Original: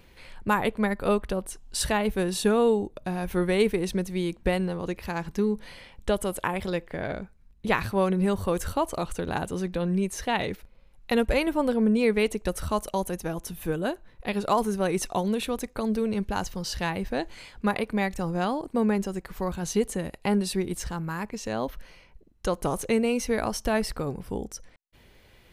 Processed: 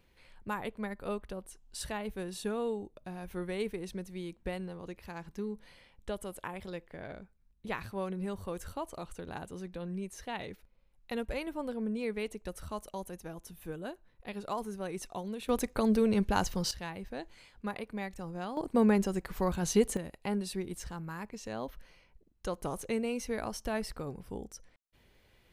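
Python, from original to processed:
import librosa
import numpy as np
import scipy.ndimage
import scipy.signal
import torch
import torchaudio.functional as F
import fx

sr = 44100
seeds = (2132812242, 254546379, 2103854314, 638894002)

y = fx.gain(x, sr, db=fx.steps((0.0, -12.5), (15.49, 0.0), (16.71, -12.0), (18.57, -1.0), (19.97, -9.0)))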